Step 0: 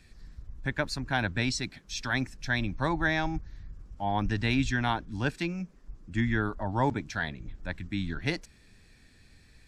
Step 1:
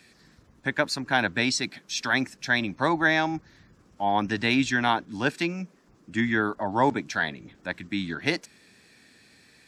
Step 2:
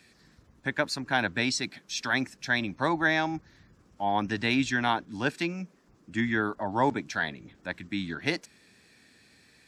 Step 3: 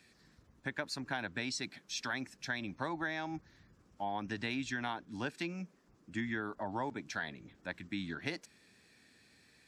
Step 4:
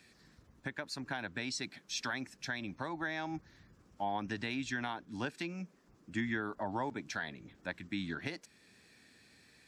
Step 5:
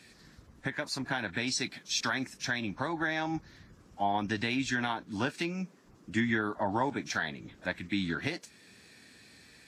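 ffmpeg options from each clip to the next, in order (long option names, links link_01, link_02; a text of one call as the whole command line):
ffmpeg -i in.wav -af "highpass=220,volume=6dB" out.wav
ffmpeg -i in.wav -af "equalizer=frequency=66:width=1:gain=3,volume=-3dB" out.wav
ffmpeg -i in.wav -af "acompressor=threshold=-28dB:ratio=6,volume=-5.5dB" out.wav
ffmpeg -i in.wav -af "alimiter=level_in=3dB:limit=-24dB:level=0:latency=1:release=472,volume=-3dB,volume=2dB" out.wav
ffmpeg -i in.wav -af "volume=6.5dB" -ar 44100 -c:a libvorbis -b:a 32k out.ogg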